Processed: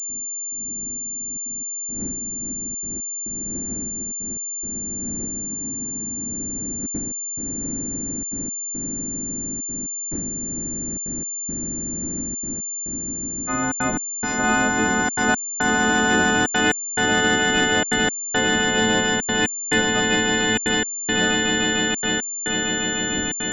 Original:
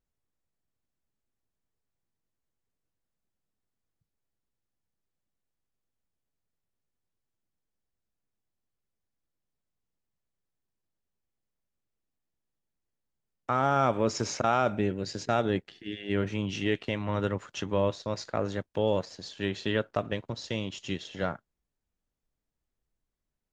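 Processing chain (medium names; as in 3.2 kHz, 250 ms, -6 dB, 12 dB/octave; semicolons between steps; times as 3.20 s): partials quantised in pitch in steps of 3 st; wind noise 260 Hz -42 dBFS; expander -51 dBFS; echo with a slow build-up 150 ms, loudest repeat 8, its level -8 dB; trance gate ".xx...xxxxxxxxxx" 175 bpm -60 dB; ten-band graphic EQ 125 Hz -5 dB, 250 Hz +11 dB, 500 Hz -4 dB, 1 kHz -5 dB, 2 kHz +6 dB; spectral freeze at 5.49 s, 0.79 s; class-D stage that switches slowly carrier 7.2 kHz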